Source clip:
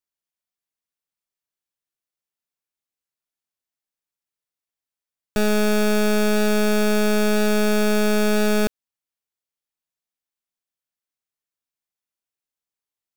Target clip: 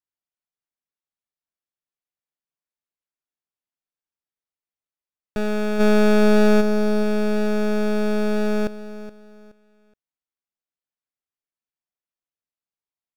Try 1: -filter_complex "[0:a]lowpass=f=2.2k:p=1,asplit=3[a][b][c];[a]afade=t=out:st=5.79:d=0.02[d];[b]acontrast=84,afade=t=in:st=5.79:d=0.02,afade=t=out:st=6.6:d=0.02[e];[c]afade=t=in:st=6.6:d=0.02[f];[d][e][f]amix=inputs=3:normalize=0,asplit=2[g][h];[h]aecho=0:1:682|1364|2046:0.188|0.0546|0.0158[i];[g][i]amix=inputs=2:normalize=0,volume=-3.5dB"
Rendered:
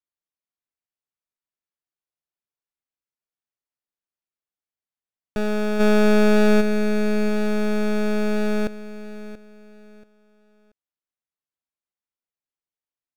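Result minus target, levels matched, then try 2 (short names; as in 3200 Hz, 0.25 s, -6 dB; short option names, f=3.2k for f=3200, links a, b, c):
echo 0.26 s late
-filter_complex "[0:a]lowpass=f=2.2k:p=1,asplit=3[a][b][c];[a]afade=t=out:st=5.79:d=0.02[d];[b]acontrast=84,afade=t=in:st=5.79:d=0.02,afade=t=out:st=6.6:d=0.02[e];[c]afade=t=in:st=6.6:d=0.02[f];[d][e][f]amix=inputs=3:normalize=0,asplit=2[g][h];[h]aecho=0:1:422|844|1266:0.188|0.0546|0.0158[i];[g][i]amix=inputs=2:normalize=0,volume=-3.5dB"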